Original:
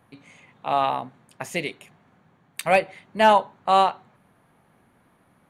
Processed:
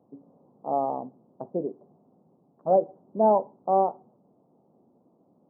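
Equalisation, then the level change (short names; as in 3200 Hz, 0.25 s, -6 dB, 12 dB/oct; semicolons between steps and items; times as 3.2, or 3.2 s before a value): Gaussian blur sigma 14 samples; HPF 280 Hz 12 dB/oct; +6.0 dB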